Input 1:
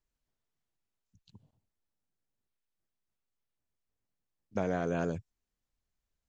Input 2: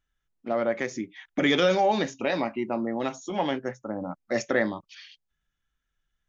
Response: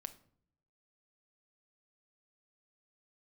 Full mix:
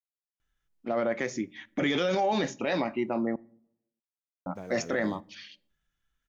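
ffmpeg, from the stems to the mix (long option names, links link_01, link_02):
-filter_complex "[0:a]aeval=exprs='val(0)*gte(abs(val(0)),0.00422)':channel_layout=same,volume=-12dB,asplit=2[link_01][link_02];[link_02]volume=-7.5dB[link_03];[1:a]adelay=400,volume=-2.5dB,asplit=3[link_04][link_05][link_06];[link_04]atrim=end=3.36,asetpts=PTS-STARTPTS,afade=type=out:start_time=3.356:duration=0.004:curve=hsin[link_07];[link_05]atrim=start=3.36:end=4.46,asetpts=PTS-STARTPTS,volume=0[link_08];[link_06]atrim=start=4.46,asetpts=PTS-STARTPTS,afade=type=in:duration=0.004:curve=hsin[link_09];[link_07][link_08][link_09]concat=n=3:v=0:a=1,asplit=2[link_10][link_11];[link_11]volume=-4dB[link_12];[2:a]atrim=start_sample=2205[link_13];[link_03][link_12]amix=inputs=2:normalize=0[link_14];[link_14][link_13]afir=irnorm=-1:irlink=0[link_15];[link_01][link_10][link_15]amix=inputs=3:normalize=0,alimiter=limit=-18.5dB:level=0:latency=1:release=11"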